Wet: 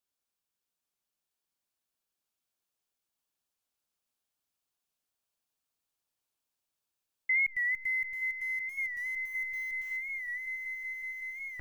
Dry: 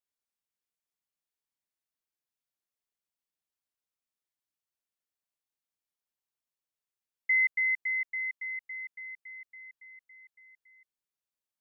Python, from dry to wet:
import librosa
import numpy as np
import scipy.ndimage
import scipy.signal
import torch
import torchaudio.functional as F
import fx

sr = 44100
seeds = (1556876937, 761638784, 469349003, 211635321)

y = fx.delta_hold(x, sr, step_db=-54.0, at=(7.43, 9.96), fade=0.02)
y = fx.peak_eq(y, sr, hz=2000.0, db=-6.5, octaves=0.27)
y = fx.echo_swell(y, sr, ms=187, loudest=8, wet_db=-13)
y = fx.record_warp(y, sr, rpm=45.0, depth_cents=100.0)
y = y * librosa.db_to_amplitude(3.5)